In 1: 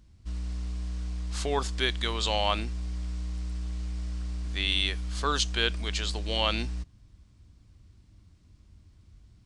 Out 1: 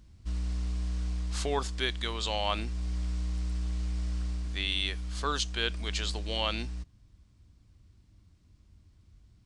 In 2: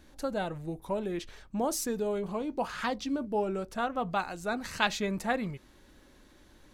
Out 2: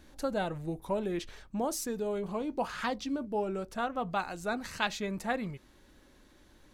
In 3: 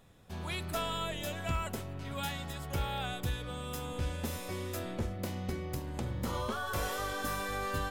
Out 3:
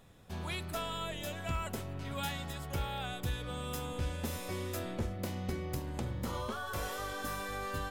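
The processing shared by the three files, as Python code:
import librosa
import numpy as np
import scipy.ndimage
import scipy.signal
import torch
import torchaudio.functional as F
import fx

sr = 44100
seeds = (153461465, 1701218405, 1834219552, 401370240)

y = fx.rider(x, sr, range_db=3, speed_s=0.5)
y = y * librosa.db_to_amplitude(-1.5)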